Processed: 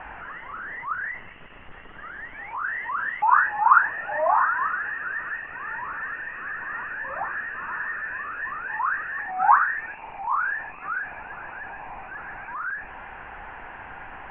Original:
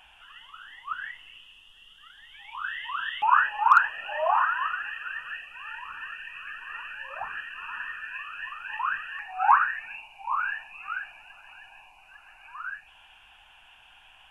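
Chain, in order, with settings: zero-crossing step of -31.5 dBFS; elliptic low-pass 2000 Hz, stop band 60 dB; gain +2 dB

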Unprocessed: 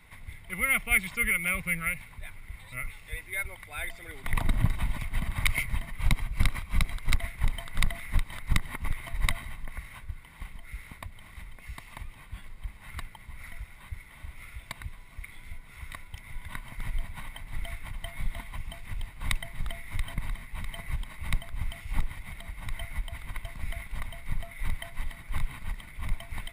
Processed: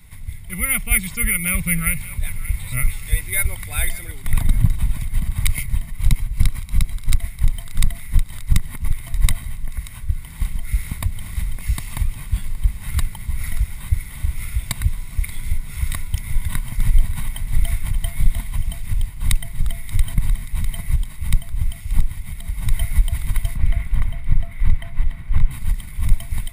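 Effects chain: tone controls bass +14 dB, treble +14 dB, from 23.54 s treble -4 dB, from 25.5 s treble +14 dB; AGC gain up to 8.5 dB; thinning echo 0.581 s, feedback 45%, level -16 dB; gain -1 dB

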